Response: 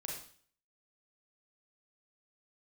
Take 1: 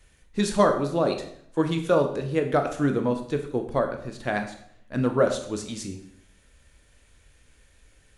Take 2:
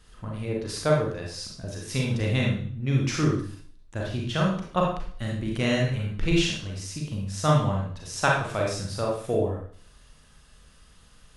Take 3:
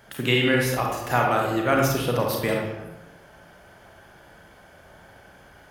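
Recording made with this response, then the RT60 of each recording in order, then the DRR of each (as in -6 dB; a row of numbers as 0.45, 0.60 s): 2; 0.65, 0.50, 1.0 s; 5.0, -2.0, -0.5 dB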